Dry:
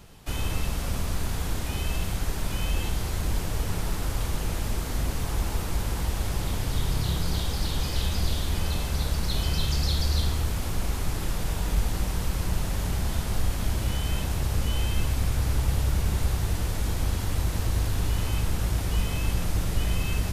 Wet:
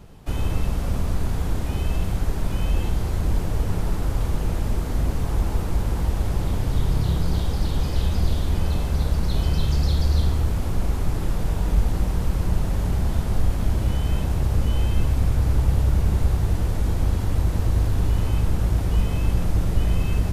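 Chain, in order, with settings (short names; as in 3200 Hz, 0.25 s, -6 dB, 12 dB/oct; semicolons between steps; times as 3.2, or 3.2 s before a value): tilt shelf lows +5.5 dB, about 1300 Hz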